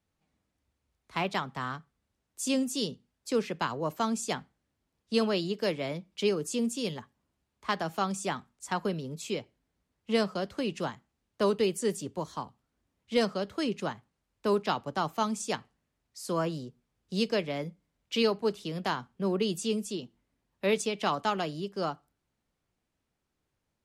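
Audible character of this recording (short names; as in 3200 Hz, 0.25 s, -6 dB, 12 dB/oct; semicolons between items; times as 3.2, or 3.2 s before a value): noise floor -82 dBFS; spectral tilt -4.5 dB/oct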